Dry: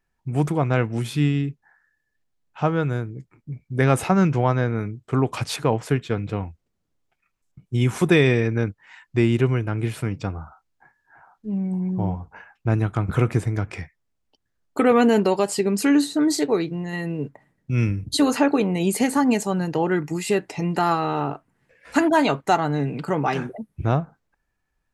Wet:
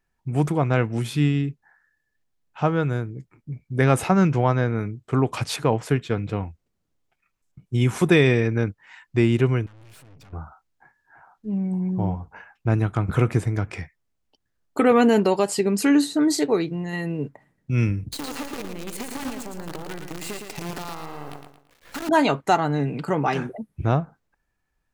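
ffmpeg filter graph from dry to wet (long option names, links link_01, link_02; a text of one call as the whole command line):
ffmpeg -i in.wav -filter_complex "[0:a]asettb=1/sr,asplit=3[link_01][link_02][link_03];[link_01]atrim=end=9.664[link_04];[link_02]atrim=start=9.66:end=10.33,asetpts=PTS-STARTPTS,afade=type=in:duration=0.004:curve=qsin,afade=type=out:start_time=0.666:duration=0.004:curve=qsin,acompressor=threshold=-28dB:ratio=5:attack=3.2:release=140:knee=1:detection=peak,aeval=exprs='(tanh(251*val(0)+0.7)-tanh(0.7))/251':channel_layout=same[link_05];[link_03]atrim=start=10.326[link_06];[link_04][link_05]acrossfade=duration=0.004:curve1=hsin:curve2=qsin[link_07];[link_07][link_06]acrossfade=duration=0.004:curve1=qsin:curve2=hsin,asettb=1/sr,asplit=3[link_08][link_09][link_10];[link_08]atrim=end=18.124[link_11];[link_09]atrim=start=18.12:end=22.09,asetpts=PTS-STARTPTS,afade=type=in:duration=0.004:curve=qsin,afade=type=out:start_time=3.966:duration=0.004:curve=qsin,acompressor=threshold=-30dB:ratio=8:attack=3.2:release=140:knee=1:detection=peak,acrusher=bits=6:dc=4:mix=0:aa=0.000001,aecho=1:1:112|224|336|448:0.501|0.18|0.065|0.0234,atrim=end_sample=175077[link_12];[link_10]atrim=start=22.086[link_13];[link_11][link_12]acrossfade=duration=0.004:curve1=hsin:curve2=qsin[link_14];[link_14][link_13]acrossfade=duration=0.004:curve1=qsin:curve2=hsin" out.wav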